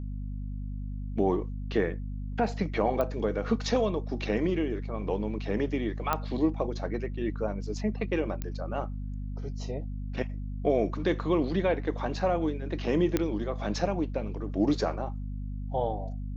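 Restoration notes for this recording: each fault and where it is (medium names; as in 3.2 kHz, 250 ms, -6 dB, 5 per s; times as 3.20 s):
hum 50 Hz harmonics 5 -35 dBFS
3.01 s: pop -17 dBFS
6.13 s: pop -12 dBFS
8.42 s: pop -19 dBFS
13.17 s: pop -12 dBFS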